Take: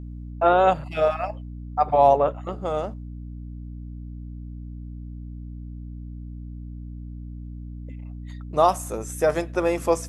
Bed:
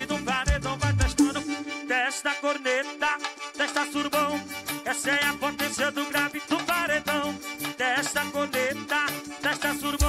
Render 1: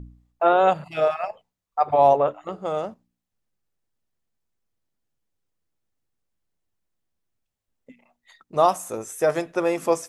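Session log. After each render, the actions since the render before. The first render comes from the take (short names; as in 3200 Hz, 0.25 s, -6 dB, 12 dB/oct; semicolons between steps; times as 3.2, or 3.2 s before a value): de-hum 60 Hz, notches 5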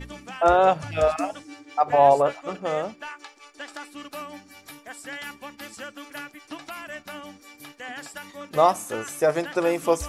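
add bed -12 dB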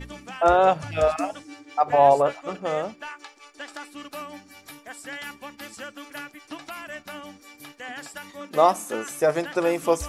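8.39–9.11 resonant low shelf 150 Hz -11 dB, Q 1.5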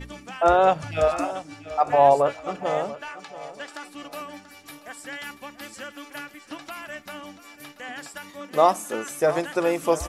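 feedback echo 0.685 s, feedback 32%, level -15.5 dB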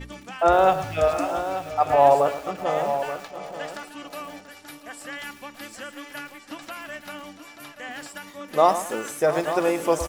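echo 0.883 s -11 dB; lo-fi delay 0.109 s, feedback 35%, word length 6-bit, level -11 dB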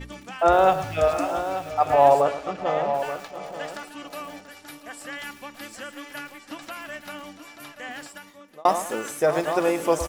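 2.21–2.93 LPF 9000 Hz -> 3800 Hz; 7.91–8.65 fade out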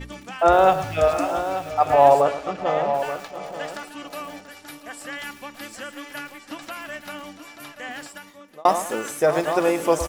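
gain +2 dB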